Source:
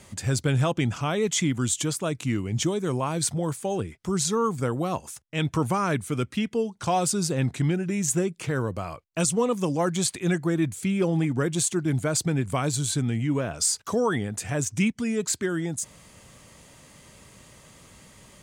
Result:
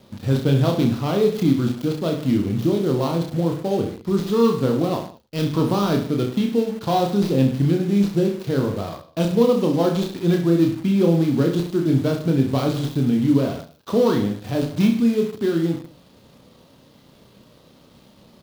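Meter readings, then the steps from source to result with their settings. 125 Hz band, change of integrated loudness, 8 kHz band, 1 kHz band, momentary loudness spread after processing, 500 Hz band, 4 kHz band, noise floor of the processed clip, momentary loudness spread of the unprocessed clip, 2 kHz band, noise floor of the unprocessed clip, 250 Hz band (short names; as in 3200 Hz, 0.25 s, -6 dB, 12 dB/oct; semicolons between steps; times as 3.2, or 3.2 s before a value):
+5.0 dB, +5.5 dB, -14.5 dB, +2.0 dB, 6 LU, +7.0 dB, +0.5 dB, -52 dBFS, 5 LU, -3.0 dB, -53 dBFS, +8.0 dB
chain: switching dead time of 0.14 ms; graphic EQ 125/250/500/2000/4000/8000 Hz +3/+8/+4/-8/+7/-11 dB; reverse bouncing-ball echo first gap 30 ms, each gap 1.15×, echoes 5; in parallel at -11.5 dB: bit-crush 5-bit; on the sum: low shelf 200 Hz -4 dB; gain -2 dB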